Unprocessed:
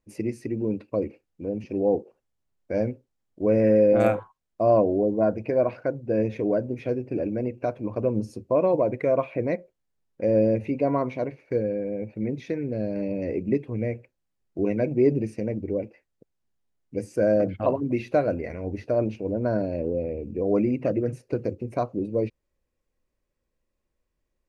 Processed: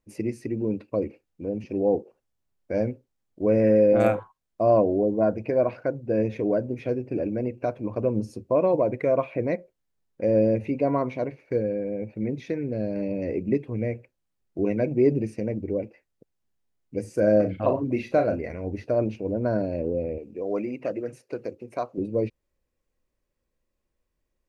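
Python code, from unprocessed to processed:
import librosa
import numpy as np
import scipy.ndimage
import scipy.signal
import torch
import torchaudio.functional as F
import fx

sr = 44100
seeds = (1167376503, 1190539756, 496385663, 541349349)

y = fx.doubler(x, sr, ms=38.0, db=-8, at=(17.01, 18.39))
y = fx.highpass(y, sr, hz=600.0, slope=6, at=(20.18, 21.98))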